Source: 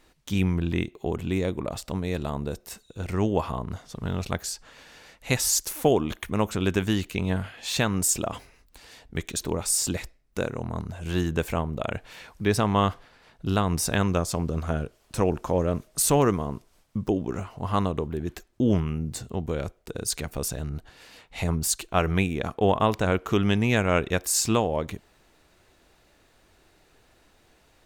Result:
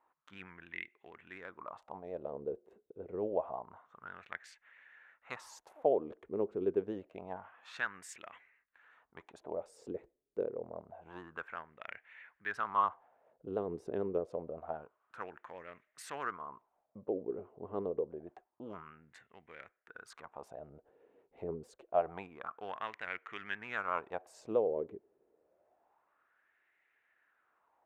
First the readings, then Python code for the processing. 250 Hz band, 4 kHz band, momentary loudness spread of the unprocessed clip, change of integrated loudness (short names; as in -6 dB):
-19.0 dB, -24.0 dB, 13 LU, -13.0 dB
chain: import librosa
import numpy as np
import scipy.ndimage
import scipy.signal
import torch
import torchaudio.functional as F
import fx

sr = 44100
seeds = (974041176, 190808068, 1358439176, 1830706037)

y = fx.wiener(x, sr, points=9)
y = fx.filter_lfo_bandpass(y, sr, shape='sine', hz=0.27, low_hz=400.0, high_hz=2000.0, q=4.5)
y = fx.vibrato(y, sr, rate_hz=11.0, depth_cents=44.0)
y = y * librosa.db_to_amplitude(-1.0)